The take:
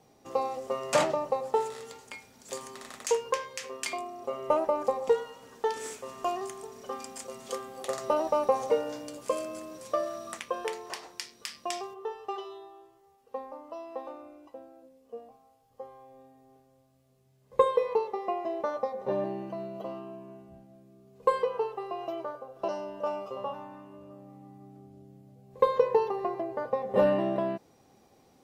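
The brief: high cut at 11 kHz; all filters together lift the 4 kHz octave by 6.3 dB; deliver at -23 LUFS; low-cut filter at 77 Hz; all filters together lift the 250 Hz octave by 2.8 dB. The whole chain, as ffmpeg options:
-af "highpass=77,lowpass=11000,equalizer=f=250:t=o:g=4,equalizer=f=4000:t=o:g=8.5,volume=2.37"

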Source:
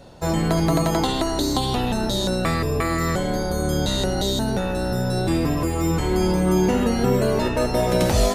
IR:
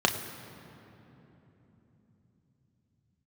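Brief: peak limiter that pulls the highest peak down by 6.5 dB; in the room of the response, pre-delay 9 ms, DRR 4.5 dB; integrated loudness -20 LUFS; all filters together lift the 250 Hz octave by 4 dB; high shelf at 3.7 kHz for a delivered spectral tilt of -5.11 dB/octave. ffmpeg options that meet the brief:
-filter_complex "[0:a]equalizer=f=250:t=o:g=5.5,highshelf=f=3700:g=9,alimiter=limit=0.316:level=0:latency=1,asplit=2[s0][s1];[1:a]atrim=start_sample=2205,adelay=9[s2];[s1][s2]afir=irnorm=-1:irlink=0,volume=0.126[s3];[s0][s3]amix=inputs=2:normalize=0,volume=0.841"

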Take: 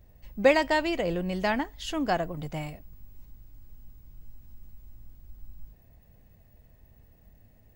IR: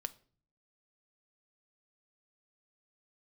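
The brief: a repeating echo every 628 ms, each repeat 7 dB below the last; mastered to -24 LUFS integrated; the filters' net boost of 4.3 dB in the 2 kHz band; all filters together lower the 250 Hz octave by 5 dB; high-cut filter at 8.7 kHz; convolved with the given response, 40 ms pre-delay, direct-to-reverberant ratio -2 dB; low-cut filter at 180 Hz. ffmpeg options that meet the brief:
-filter_complex "[0:a]highpass=180,lowpass=8700,equalizer=f=250:t=o:g=-5.5,equalizer=f=2000:t=o:g=5,aecho=1:1:628|1256|1884|2512|3140:0.447|0.201|0.0905|0.0407|0.0183,asplit=2[s0][s1];[1:a]atrim=start_sample=2205,adelay=40[s2];[s1][s2]afir=irnorm=-1:irlink=0,volume=1.5[s3];[s0][s3]amix=inputs=2:normalize=0,volume=0.841"

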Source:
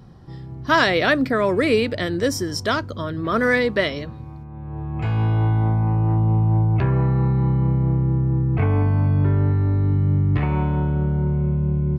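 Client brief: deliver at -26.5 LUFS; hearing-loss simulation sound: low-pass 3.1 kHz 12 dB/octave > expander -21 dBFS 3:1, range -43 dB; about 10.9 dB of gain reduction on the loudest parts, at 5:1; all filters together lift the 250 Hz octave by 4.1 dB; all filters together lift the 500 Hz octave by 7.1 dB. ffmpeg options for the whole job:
-af "equalizer=f=250:t=o:g=3.5,equalizer=f=500:t=o:g=7.5,acompressor=threshold=0.0891:ratio=5,lowpass=3100,agate=range=0.00708:threshold=0.0891:ratio=3,volume=0.841"

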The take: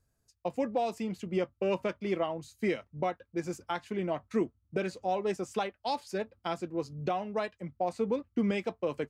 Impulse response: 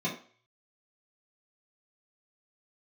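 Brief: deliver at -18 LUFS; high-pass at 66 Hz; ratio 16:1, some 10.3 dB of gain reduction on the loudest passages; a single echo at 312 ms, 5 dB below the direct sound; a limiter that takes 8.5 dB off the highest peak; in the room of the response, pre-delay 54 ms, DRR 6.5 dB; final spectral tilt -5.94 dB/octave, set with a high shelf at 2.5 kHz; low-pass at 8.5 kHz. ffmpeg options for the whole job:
-filter_complex "[0:a]highpass=66,lowpass=8500,highshelf=f=2500:g=-6,acompressor=threshold=0.0178:ratio=16,alimiter=level_in=2.51:limit=0.0631:level=0:latency=1,volume=0.398,aecho=1:1:312:0.562,asplit=2[s0][s1];[1:a]atrim=start_sample=2205,adelay=54[s2];[s1][s2]afir=irnorm=-1:irlink=0,volume=0.211[s3];[s0][s3]amix=inputs=2:normalize=0,volume=11.9"

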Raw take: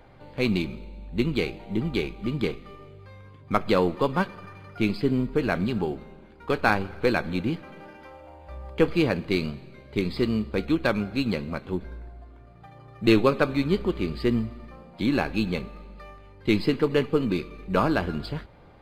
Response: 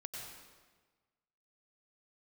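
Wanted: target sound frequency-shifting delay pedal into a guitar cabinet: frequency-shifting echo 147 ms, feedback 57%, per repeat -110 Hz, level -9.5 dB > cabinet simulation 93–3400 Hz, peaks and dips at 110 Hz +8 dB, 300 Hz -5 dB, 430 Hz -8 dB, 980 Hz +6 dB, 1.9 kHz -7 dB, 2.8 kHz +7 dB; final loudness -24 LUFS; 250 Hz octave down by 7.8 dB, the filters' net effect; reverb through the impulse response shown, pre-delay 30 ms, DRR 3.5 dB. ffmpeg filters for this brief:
-filter_complex "[0:a]equalizer=f=250:t=o:g=-7.5,asplit=2[s0][s1];[1:a]atrim=start_sample=2205,adelay=30[s2];[s1][s2]afir=irnorm=-1:irlink=0,volume=0.841[s3];[s0][s3]amix=inputs=2:normalize=0,asplit=8[s4][s5][s6][s7][s8][s9][s10][s11];[s5]adelay=147,afreqshift=-110,volume=0.335[s12];[s6]adelay=294,afreqshift=-220,volume=0.191[s13];[s7]adelay=441,afreqshift=-330,volume=0.108[s14];[s8]adelay=588,afreqshift=-440,volume=0.0624[s15];[s9]adelay=735,afreqshift=-550,volume=0.0355[s16];[s10]adelay=882,afreqshift=-660,volume=0.0202[s17];[s11]adelay=1029,afreqshift=-770,volume=0.0115[s18];[s4][s12][s13][s14][s15][s16][s17][s18]amix=inputs=8:normalize=0,highpass=93,equalizer=f=110:t=q:w=4:g=8,equalizer=f=300:t=q:w=4:g=-5,equalizer=f=430:t=q:w=4:g=-8,equalizer=f=980:t=q:w=4:g=6,equalizer=f=1900:t=q:w=4:g=-7,equalizer=f=2800:t=q:w=4:g=7,lowpass=f=3400:w=0.5412,lowpass=f=3400:w=1.3066,volume=1.5"

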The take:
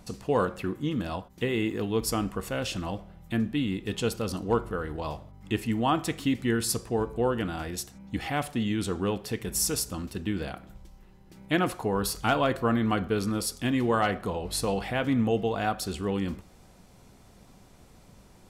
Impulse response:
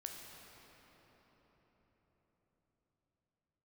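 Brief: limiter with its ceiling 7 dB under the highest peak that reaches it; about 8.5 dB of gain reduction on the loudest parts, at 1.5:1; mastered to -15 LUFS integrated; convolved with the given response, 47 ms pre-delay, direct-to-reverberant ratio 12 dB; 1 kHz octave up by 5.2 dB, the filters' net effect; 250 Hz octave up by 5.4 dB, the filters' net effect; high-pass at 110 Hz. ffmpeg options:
-filter_complex "[0:a]highpass=110,equalizer=f=250:t=o:g=6.5,equalizer=f=1000:t=o:g=6.5,acompressor=threshold=0.01:ratio=1.5,alimiter=limit=0.0841:level=0:latency=1,asplit=2[s0][s1];[1:a]atrim=start_sample=2205,adelay=47[s2];[s1][s2]afir=irnorm=-1:irlink=0,volume=0.335[s3];[s0][s3]amix=inputs=2:normalize=0,volume=8.41"

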